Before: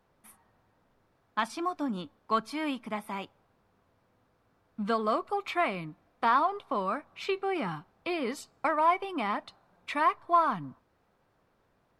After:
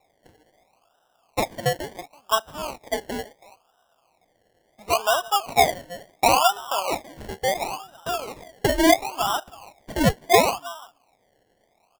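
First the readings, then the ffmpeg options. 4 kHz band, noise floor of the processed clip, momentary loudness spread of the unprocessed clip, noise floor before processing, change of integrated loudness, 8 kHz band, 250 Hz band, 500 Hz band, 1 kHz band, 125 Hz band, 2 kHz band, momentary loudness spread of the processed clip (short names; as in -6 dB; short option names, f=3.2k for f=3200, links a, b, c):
+14.5 dB, -67 dBFS, 13 LU, -71 dBFS, +7.5 dB, n/a, +6.0 dB, +9.0 dB, +5.0 dB, +12.0 dB, +7.5 dB, 18 LU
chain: -af "highpass=f=720:t=q:w=4.9,aecho=1:1:328:0.1,acrusher=samples=28:mix=1:aa=0.000001:lfo=1:lforange=16.8:lforate=0.72"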